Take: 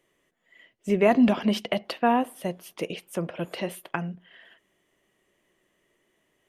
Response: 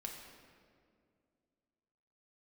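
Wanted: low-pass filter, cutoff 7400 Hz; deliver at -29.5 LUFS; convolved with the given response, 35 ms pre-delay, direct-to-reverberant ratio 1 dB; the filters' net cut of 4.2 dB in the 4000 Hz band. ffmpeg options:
-filter_complex "[0:a]lowpass=7.4k,equalizer=f=4k:t=o:g=-6.5,asplit=2[a][b];[1:a]atrim=start_sample=2205,adelay=35[c];[b][c]afir=irnorm=-1:irlink=0,volume=1dB[d];[a][d]amix=inputs=2:normalize=0,volume=-6dB"

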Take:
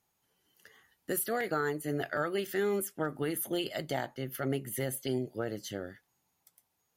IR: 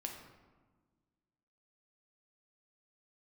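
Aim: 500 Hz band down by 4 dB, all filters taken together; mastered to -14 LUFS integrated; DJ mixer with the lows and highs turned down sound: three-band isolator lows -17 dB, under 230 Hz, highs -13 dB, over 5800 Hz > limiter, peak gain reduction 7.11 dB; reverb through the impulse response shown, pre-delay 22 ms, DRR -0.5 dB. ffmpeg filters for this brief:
-filter_complex "[0:a]equalizer=f=500:t=o:g=-4.5,asplit=2[a][b];[1:a]atrim=start_sample=2205,adelay=22[c];[b][c]afir=irnorm=-1:irlink=0,volume=2dB[d];[a][d]amix=inputs=2:normalize=0,acrossover=split=230 5800:gain=0.141 1 0.224[e][f][g];[e][f][g]amix=inputs=3:normalize=0,volume=22dB,alimiter=limit=-3dB:level=0:latency=1"

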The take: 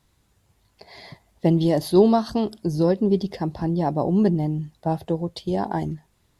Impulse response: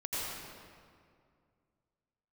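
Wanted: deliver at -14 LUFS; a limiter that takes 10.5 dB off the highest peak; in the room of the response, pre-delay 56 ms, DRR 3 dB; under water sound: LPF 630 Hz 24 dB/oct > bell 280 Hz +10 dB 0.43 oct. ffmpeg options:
-filter_complex "[0:a]alimiter=limit=-15.5dB:level=0:latency=1,asplit=2[a][b];[1:a]atrim=start_sample=2205,adelay=56[c];[b][c]afir=irnorm=-1:irlink=0,volume=-8dB[d];[a][d]amix=inputs=2:normalize=0,lowpass=f=630:w=0.5412,lowpass=f=630:w=1.3066,equalizer=f=280:t=o:w=0.43:g=10,volume=8dB"

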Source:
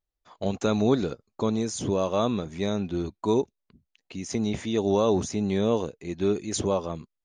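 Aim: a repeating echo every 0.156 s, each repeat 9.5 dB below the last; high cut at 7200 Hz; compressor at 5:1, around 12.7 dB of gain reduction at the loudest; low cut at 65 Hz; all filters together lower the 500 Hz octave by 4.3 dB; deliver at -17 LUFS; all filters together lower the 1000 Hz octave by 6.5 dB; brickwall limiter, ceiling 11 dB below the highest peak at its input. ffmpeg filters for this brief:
-af "highpass=65,lowpass=7.2k,equalizer=f=500:t=o:g=-4,equalizer=f=1k:t=o:g=-7,acompressor=threshold=-34dB:ratio=5,alimiter=level_in=8.5dB:limit=-24dB:level=0:latency=1,volume=-8.5dB,aecho=1:1:156|312|468|624:0.335|0.111|0.0365|0.012,volume=26dB"

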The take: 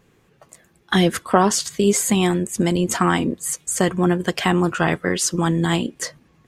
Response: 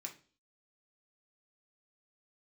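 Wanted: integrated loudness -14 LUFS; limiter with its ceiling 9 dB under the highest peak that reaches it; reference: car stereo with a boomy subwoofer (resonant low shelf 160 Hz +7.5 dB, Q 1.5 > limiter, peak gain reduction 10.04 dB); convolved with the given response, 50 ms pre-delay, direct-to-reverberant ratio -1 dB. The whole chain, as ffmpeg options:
-filter_complex "[0:a]alimiter=limit=-11.5dB:level=0:latency=1,asplit=2[a][b];[1:a]atrim=start_sample=2205,adelay=50[c];[b][c]afir=irnorm=-1:irlink=0,volume=4dB[d];[a][d]amix=inputs=2:normalize=0,lowshelf=f=160:t=q:w=1.5:g=7.5,volume=11dB,alimiter=limit=-5.5dB:level=0:latency=1"

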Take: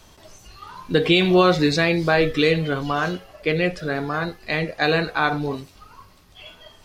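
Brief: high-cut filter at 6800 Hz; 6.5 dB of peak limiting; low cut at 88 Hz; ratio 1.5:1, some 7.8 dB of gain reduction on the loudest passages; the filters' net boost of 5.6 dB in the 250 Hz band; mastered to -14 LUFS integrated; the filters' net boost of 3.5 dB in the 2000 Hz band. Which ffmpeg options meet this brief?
-af "highpass=88,lowpass=6.8k,equalizer=f=250:t=o:g=9,equalizer=f=2k:t=o:g=4.5,acompressor=threshold=-30dB:ratio=1.5,volume=12dB,alimiter=limit=-3dB:level=0:latency=1"

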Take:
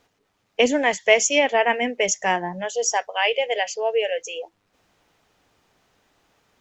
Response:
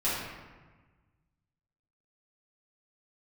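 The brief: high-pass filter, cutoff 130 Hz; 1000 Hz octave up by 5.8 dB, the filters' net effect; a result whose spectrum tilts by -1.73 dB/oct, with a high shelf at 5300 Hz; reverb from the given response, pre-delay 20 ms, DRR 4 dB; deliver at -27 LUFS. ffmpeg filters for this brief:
-filter_complex "[0:a]highpass=130,equalizer=f=1k:t=o:g=8,highshelf=f=5.3k:g=-4,asplit=2[a][b];[1:a]atrim=start_sample=2205,adelay=20[c];[b][c]afir=irnorm=-1:irlink=0,volume=-14dB[d];[a][d]amix=inputs=2:normalize=0,volume=-9dB"

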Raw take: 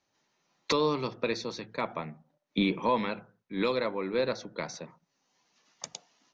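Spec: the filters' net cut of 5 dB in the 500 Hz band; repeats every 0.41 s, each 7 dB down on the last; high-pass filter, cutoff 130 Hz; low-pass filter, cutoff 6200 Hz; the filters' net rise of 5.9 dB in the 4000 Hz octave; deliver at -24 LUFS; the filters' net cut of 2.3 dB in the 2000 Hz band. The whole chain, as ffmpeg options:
-af "highpass=130,lowpass=6.2k,equalizer=f=500:t=o:g=-5.5,equalizer=f=2k:t=o:g=-5.5,equalizer=f=4k:t=o:g=8.5,aecho=1:1:410|820|1230|1640|2050:0.447|0.201|0.0905|0.0407|0.0183,volume=8dB"

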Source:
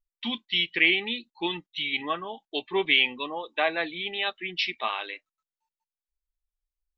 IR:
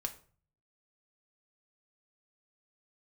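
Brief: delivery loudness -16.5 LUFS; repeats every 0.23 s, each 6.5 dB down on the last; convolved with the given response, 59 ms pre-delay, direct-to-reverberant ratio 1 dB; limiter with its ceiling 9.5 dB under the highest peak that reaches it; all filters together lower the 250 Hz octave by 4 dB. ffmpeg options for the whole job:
-filter_complex "[0:a]equalizer=f=250:t=o:g=-6,alimiter=limit=-16dB:level=0:latency=1,aecho=1:1:230|460|690|920|1150|1380:0.473|0.222|0.105|0.0491|0.0231|0.0109,asplit=2[a][b];[1:a]atrim=start_sample=2205,adelay=59[c];[b][c]afir=irnorm=-1:irlink=0,volume=-1dB[d];[a][d]amix=inputs=2:normalize=0,volume=10dB"

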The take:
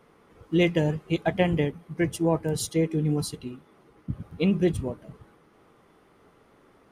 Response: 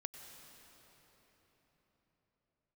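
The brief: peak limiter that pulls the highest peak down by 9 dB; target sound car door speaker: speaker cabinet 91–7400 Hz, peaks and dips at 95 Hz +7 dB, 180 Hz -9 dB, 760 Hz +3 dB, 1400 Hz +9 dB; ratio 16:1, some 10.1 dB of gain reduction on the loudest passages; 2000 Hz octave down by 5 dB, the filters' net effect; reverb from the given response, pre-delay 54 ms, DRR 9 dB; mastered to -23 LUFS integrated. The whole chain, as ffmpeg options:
-filter_complex "[0:a]equalizer=f=2k:t=o:g=-8,acompressor=threshold=-28dB:ratio=16,alimiter=level_in=3.5dB:limit=-24dB:level=0:latency=1,volume=-3.5dB,asplit=2[a][b];[1:a]atrim=start_sample=2205,adelay=54[c];[b][c]afir=irnorm=-1:irlink=0,volume=-6dB[d];[a][d]amix=inputs=2:normalize=0,highpass=91,equalizer=f=95:t=q:w=4:g=7,equalizer=f=180:t=q:w=4:g=-9,equalizer=f=760:t=q:w=4:g=3,equalizer=f=1.4k:t=q:w=4:g=9,lowpass=f=7.4k:w=0.5412,lowpass=f=7.4k:w=1.3066,volume=16dB"

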